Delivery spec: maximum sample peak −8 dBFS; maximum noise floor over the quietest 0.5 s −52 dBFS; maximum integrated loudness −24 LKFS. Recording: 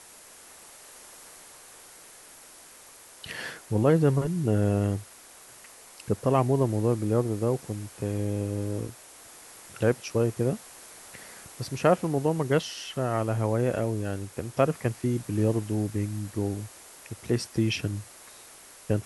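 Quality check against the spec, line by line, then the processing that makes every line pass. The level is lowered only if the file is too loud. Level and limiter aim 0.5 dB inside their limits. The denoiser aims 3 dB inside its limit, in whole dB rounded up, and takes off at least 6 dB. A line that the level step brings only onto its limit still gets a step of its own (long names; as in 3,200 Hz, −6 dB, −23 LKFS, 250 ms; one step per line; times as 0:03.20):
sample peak −9.0 dBFS: in spec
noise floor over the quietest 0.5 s −50 dBFS: out of spec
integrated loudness −27.5 LKFS: in spec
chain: broadband denoise 6 dB, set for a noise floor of −50 dBFS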